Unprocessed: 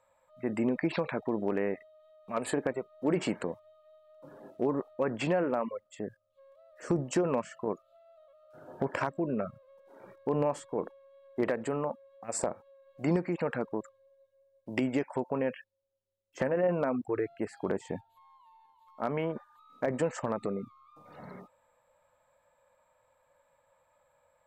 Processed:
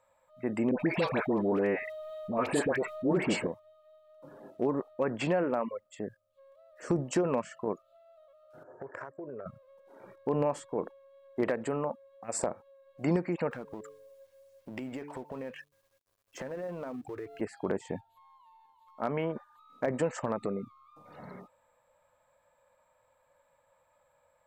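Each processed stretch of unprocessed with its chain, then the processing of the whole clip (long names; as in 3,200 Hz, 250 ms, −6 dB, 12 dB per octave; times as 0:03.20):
0:00.71–0:03.47: all-pass dispersion highs, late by 92 ms, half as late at 1,100 Hz + envelope flattener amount 50%
0:08.63–0:09.46: drawn EQ curve 110 Hz 0 dB, 200 Hz −18 dB, 430 Hz −1 dB, 810 Hz −7 dB, 1,800 Hz −2 dB, 3,200 Hz −28 dB, 7,200 Hz −7 dB, 10,000 Hz −15 dB + downward compressor, threshold −37 dBFS + band-pass filter 140–7,900 Hz
0:13.51–0:17.41: mu-law and A-law mismatch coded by mu + hum removal 145.4 Hz, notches 3 + downward compressor 2 to 1, threshold −44 dBFS
whole clip: no processing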